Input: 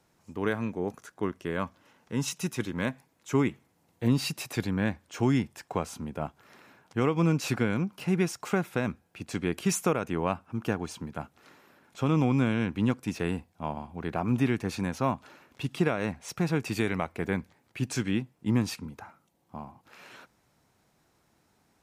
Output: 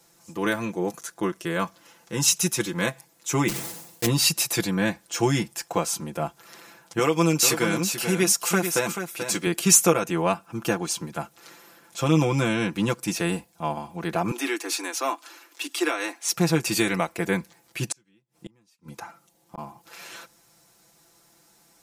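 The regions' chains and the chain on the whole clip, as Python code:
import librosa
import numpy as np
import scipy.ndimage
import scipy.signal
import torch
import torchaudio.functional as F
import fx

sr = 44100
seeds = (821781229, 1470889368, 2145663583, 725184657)

y = fx.chain(x, sr, fx.block_float(bits=3),
    fx.sustainer(db_per_s=66.0), at=(3.48, 4.07))
y = fx.chain(y, sr, fx.highpass(hz=230.0, slope=6),
    fx.high_shelf(hz=6300.0, db=5.5),
    fx.echo_single(ms=435, db=-8.0), at=(6.99, 9.47))
y = fx.chain(y, sr, fx.steep_highpass(hz=260.0, slope=96),
    fx.peak_eq(hz=520.0, db=-8.0, octaves=1.1), at=(14.31, 16.33))
y = fx.chain(y, sr, fx.high_shelf(hz=10000.0, db=-5.5),
    fx.gate_flip(shuts_db=-28.0, range_db=-39), at=(17.84, 19.58))
y = fx.bass_treble(y, sr, bass_db=-5, treble_db=11)
y = y + 0.81 * np.pad(y, (int(5.9 * sr / 1000.0), 0))[:len(y)]
y = y * librosa.db_to_amplitude(4.0)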